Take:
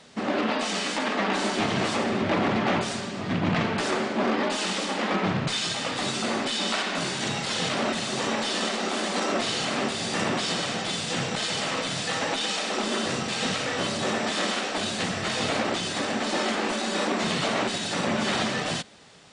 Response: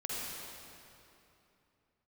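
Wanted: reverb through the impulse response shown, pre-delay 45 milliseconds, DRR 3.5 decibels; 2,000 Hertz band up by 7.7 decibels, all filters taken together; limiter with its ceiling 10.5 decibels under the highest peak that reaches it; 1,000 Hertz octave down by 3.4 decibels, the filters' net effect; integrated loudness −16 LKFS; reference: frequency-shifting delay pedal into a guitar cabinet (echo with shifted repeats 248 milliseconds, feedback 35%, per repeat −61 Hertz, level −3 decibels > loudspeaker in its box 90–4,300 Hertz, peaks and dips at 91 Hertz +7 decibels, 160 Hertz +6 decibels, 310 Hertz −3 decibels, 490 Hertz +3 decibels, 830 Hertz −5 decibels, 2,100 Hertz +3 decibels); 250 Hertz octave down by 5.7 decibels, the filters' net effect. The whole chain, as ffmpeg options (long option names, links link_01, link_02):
-filter_complex "[0:a]equalizer=frequency=250:width_type=o:gain=-8.5,equalizer=frequency=1000:width_type=o:gain=-5,equalizer=frequency=2000:width_type=o:gain=9,alimiter=limit=-21dB:level=0:latency=1,asplit=2[link_01][link_02];[1:a]atrim=start_sample=2205,adelay=45[link_03];[link_02][link_03]afir=irnorm=-1:irlink=0,volume=-7dB[link_04];[link_01][link_04]amix=inputs=2:normalize=0,asplit=6[link_05][link_06][link_07][link_08][link_09][link_10];[link_06]adelay=248,afreqshift=-61,volume=-3dB[link_11];[link_07]adelay=496,afreqshift=-122,volume=-12.1dB[link_12];[link_08]adelay=744,afreqshift=-183,volume=-21.2dB[link_13];[link_09]adelay=992,afreqshift=-244,volume=-30.4dB[link_14];[link_10]adelay=1240,afreqshift=-305,volume=-39.5dB[link_15];[link_05][link_11][link_12][link_13][link_14][link_15]amix=inputs=6:normalize=0,highpass=90,equalizer=frequency=91:width_type=q:width=4:gain=7,equalizer=frequency=160:width_type=q:width=4:gain=6,equalizer=frequency=310:width_type=q:width=4:gain=-3,equalizer=frequency=490:width_type=q:width=4:gain=3,equalizer=frequency=830:width_type=q:width=4:gain=-5,equalizer=frequency=2100:width_type=q:width=4:gain=3,lowpass=frequency=4300:width=0.5412,lowpass=frequency=4300:width=1.3066,volume=8.5dB"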